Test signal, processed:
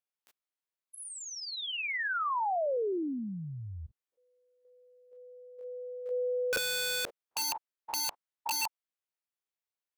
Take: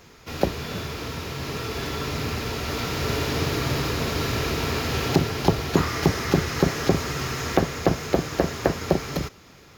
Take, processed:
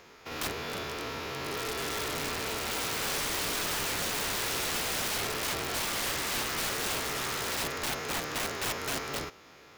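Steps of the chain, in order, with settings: spectrogram pixelated in time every 50 ms; tone controls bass -12 dB, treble -5 dB; integer overflow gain 26.5 dB

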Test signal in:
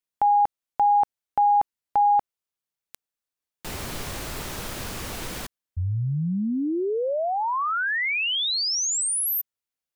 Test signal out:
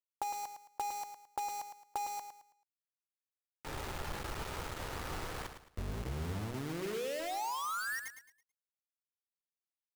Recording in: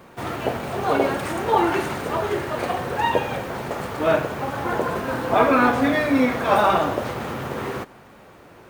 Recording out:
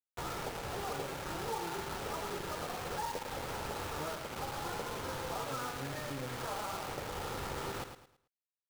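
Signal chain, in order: octave divider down 1 oct, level +4 dB; steep low-pass 1.6 kHz 36 dB/octave; bass shelf 470 Hz -7.5 dB; hum notches 60/120/180/240/300/360/420 Hz; compression 10:1, threshold -32 dBFS; comb 2.3 ms, depth 33%; word length cut 6-bit, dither none; feedback delay 109 ms, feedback 31%, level -8.5 dB; trim -5.5 dB

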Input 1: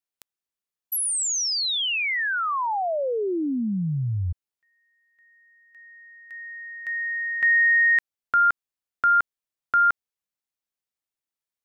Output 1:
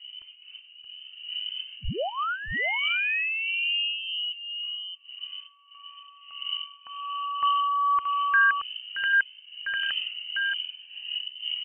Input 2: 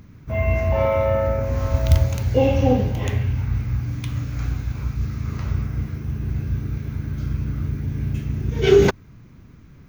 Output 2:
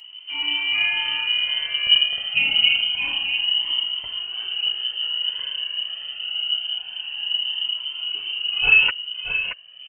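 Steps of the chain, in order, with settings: wind noise 130 Hz -36 dBFS; frequency inversion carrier 3 kHz; delay 626 ms -7.5 dB; Shepard-style flanger rising 0.26 Hz

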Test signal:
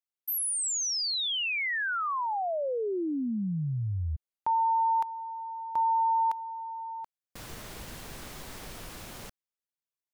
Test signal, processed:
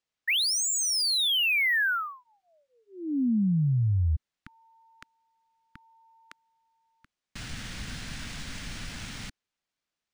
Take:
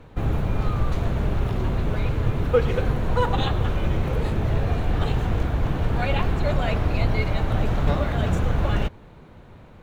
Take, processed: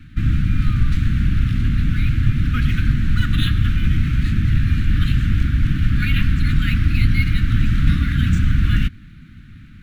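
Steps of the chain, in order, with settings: inverse Chebyshev band-stop 410–980 Hz, stop band 40 dB; decimation joined by straight lines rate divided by 3×; trim +6.5 dB

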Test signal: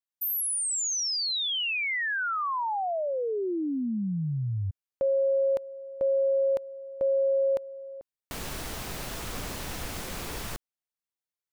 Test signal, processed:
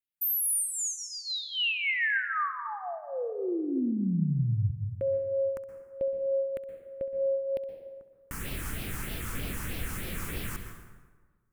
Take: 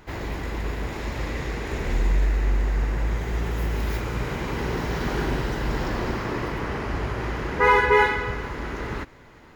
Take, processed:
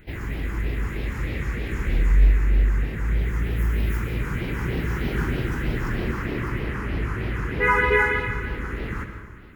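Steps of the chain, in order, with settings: phase shifter stages 4, 3.2 Hz, lowest notch 590–1200 Hz; flutter echo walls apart 11.4 m, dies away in 0.25 s; plate-style reverb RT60 1.4 s, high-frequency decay 0.6×, pre-delay 110 ms, DRR 7 dB; trim +1 dB

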